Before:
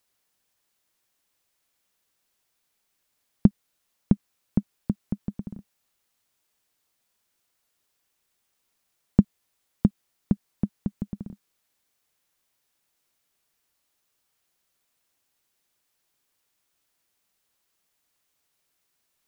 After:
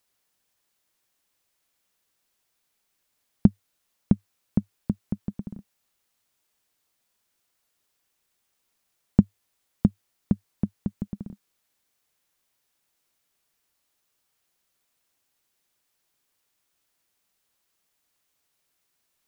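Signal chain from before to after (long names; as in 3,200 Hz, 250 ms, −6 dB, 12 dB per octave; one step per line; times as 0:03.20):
dynamic equaliser 100 Hz, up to +5 dB, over −42 dBFS, Q 4.9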